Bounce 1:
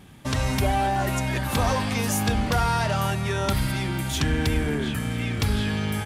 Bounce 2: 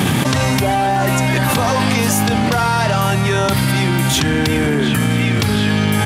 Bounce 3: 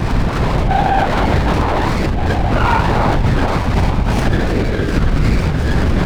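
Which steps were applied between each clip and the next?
high-pass 100 Hz 24 dB/octave; level flattener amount 100%; trim +5.5 dB
simulated room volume 670 m³, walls furnished, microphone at 4.3 m; LPC vocoder at 8 kHz whisper; sliding maximum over 9 samples; trim -6 dB

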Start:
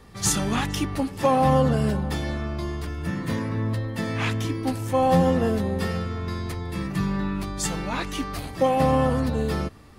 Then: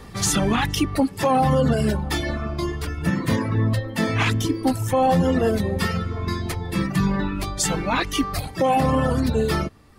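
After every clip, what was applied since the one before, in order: reverb removal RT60 1.5 s; peak limiter -19.5 dBFS, peak gain reduction 9.5 dB; trim +8.5 dB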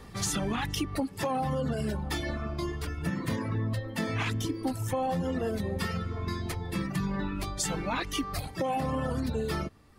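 compression, threshold -20 dBFS, peak gain reduction 6 dB; trim -6.5 dB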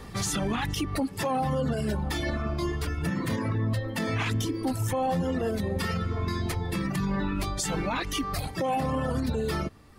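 peak limiter -25 dBFS, peak gain reduction 6.5 dB; trim +5 dB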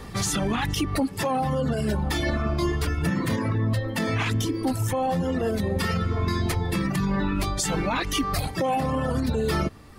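gain riding 0.5 s; trim +3.5 dB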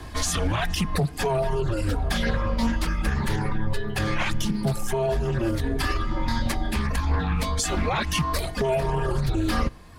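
on a send at -23 dB: reverberation RT60 0.50 s, pre-delay 3 ms; on the sum: frequency shift -120 Hz; loudspeaker Doppler distortion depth 0.24 ms; trim +1 dB

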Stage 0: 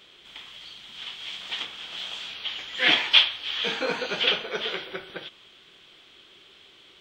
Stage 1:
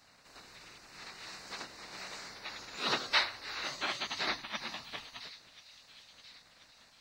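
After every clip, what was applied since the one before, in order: spectral gate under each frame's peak -15 dB weak; feedback echo behind a high-pass 1034 ms, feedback 48%, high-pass 3.3 kHz, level -12 dB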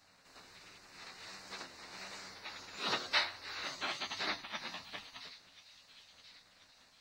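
flange 1.4 Hz, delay 9.9 ms, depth 2 ms, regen +51%; trim +1 dB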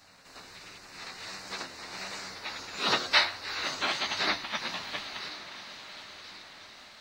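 echo that smears into a reverb 974 ms, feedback 51%, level -13 dB; trim +8.5 dB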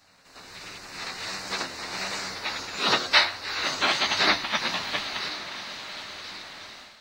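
level rider gain up to 10 dB; trim -2.5 dB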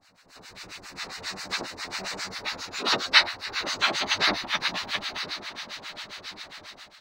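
harmonic tremolo 7.4 Hz, depth 100%, crossover 890 Hz; trim +3 dB

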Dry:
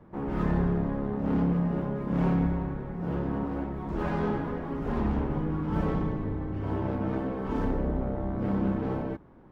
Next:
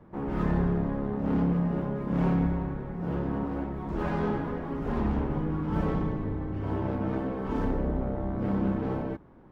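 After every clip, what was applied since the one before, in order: no audible change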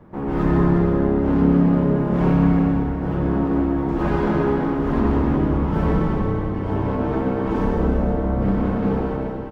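on a send: delay 347 ms -10 dB; on the sum: plate-style reverb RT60 2.3 s, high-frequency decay 0.8×, pre-delay 80 ms, DRR 1 dB; trim +6 dB

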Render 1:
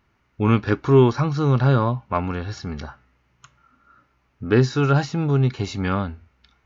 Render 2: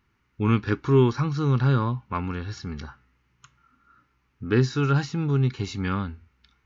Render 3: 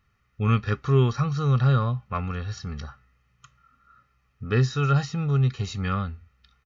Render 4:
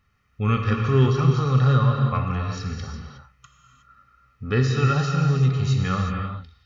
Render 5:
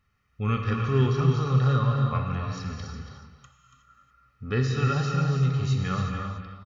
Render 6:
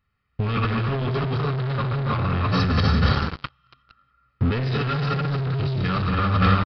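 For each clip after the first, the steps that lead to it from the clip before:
peaking EQ 640 Hz -13.5 dB 0.53 oct; trim -3 dB
comb 1.6 ms, depth 74%; trim -1.5 dB
gated-style reverb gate 390 ms flat, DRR 1.5 dB; trim +1 dB
delay 283 ms -9 dB; trim -4.5 dB
waveshaping leveller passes 5; compressor with a negative ratio -22 dBFS, ratio -1; resampled via 11.025 kHz

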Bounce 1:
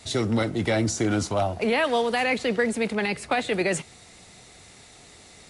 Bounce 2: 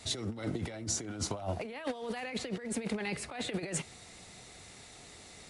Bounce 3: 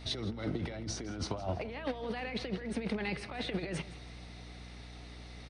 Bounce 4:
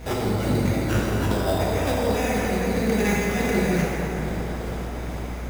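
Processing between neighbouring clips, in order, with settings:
compressor with a negative ratio -28 dBFS, ratio -0.5; trim -7.5 dB
Savitzky-Golay filter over 15 samples; hum 60 Hz, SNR 10 dB; feedback delay 164 ms, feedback 36%, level -17 dB
wind noise 520 Hz -52 dBFS; sample-rate reducer 4.3 kHz, jitter 0%; plate-style reverb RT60 4.4 s, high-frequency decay 0.45×, DRR -5.5 dB; trim +7.5 dB

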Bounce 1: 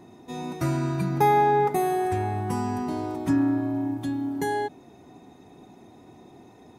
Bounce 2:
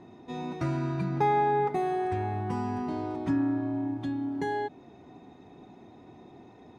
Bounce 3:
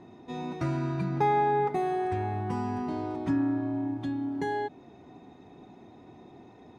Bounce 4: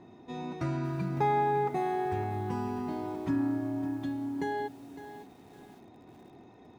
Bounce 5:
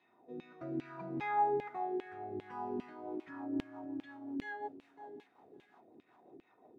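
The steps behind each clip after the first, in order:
low-pass 4.1 kHz 12 dB/octave; in parallel at -1.5 dB: compression, threshold -31 dBFS, peak gain reduction 14 dB; on the sum: trim -6.5 dB
no audible change
bit-crushed delay 557 ms, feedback 35%, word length 8-bit, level -12.5 dB; trim -2.5 dB
rotary cabinet horn 0.6 Hz, later 5.5 Hz, at 2.56 s; LFO band-pass saw down 2.5 Hz 290–2900 Hz; trim +2.5 dB

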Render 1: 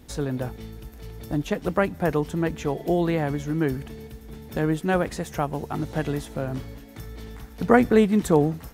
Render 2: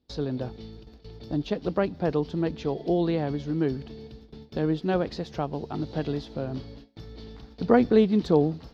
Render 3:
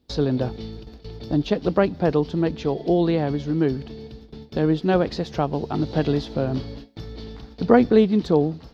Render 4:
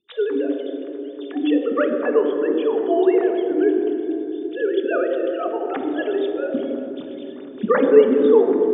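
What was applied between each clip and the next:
bass shelf 150 Hz -6.5 dB; gate with hold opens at -33 dBFS; FFT filter 390 Hz 0 dB, 2 kHz -10 dB, 4.6 kHz +4 dB, 8.5 kHz -29 dB
gain riding within 4 dB 2 s; trim +4 dB
formants replaced by sine waves; reverberation RT60 3.4 s, pre-delay 3 ms, DRR 3 dB; trim -5 dB

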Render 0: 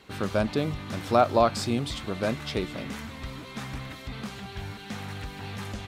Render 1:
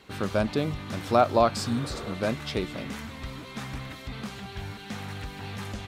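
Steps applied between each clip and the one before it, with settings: spectral replace 1.64–2.10 s, 320–3800 Hz both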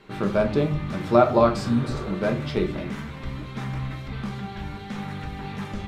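treble shelf 3.6 kHz -12 dB; band-stop 690 Hz, Q 12; on a send at -3 dB: reverberation RT60 0.40 s, pre-delay 3 ms; on the sum: trim +2.5 dB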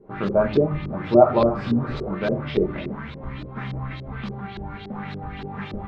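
LFO low-pass saw up 3.5 Hz 360–4700 Hz; trim -1 dB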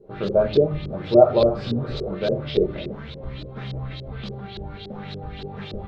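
graphic EQ 250/500/1000/2000/4000 Hz -7/+6/-9/-7/+8 dB; trim +1 dB

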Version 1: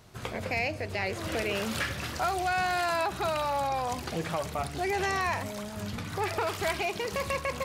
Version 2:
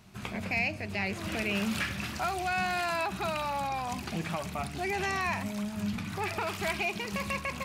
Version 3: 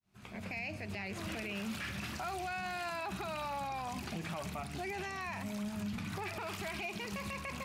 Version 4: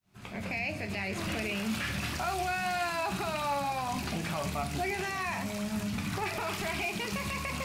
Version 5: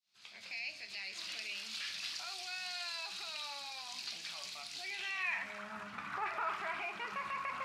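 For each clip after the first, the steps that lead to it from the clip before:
graphic EQ with 31 bands 200 Hz +11 dB, 500 Hz -9 dB, 2.5 kHz +6 dB; trim -2.5 dB
fade-in on the opening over 0.73 s; peak limiter -28.5 dBFS, peak gain reduction 9.5 dB; trim -2.5 dB
feedback echo behind a high-pass 278 ms, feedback 79%, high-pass 4.8 kHz, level -5 dB; on a send at -7.5 dB: reverberation RT60 0.35 s, pre-delay 7 ms; on the sum: trim +6 dB
band-pass sweep 4.4 kHz -> 1.3 kHz, 4.82–5.70 s; trim +3 dB

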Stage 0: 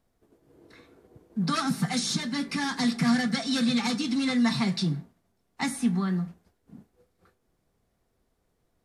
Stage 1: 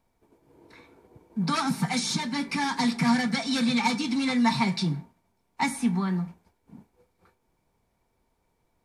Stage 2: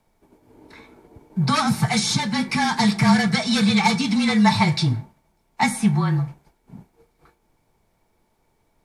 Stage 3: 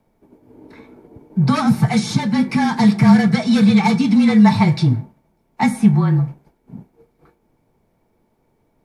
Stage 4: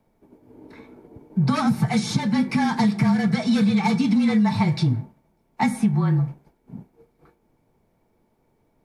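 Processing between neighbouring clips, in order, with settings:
small resonant body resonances 920/2300 Hz, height 13 dB, ringing for 35 ms
frequency shift -31 Hz; trim +6.5 dB
graphic EQ 125/250/500/4000/8000 Hz +5/+7/+5/-3/-5 dB; trim -1 dB
compression 10:1, threshold -13 dBFS, peak gain reduction 8 dB; trim -2.5 dB

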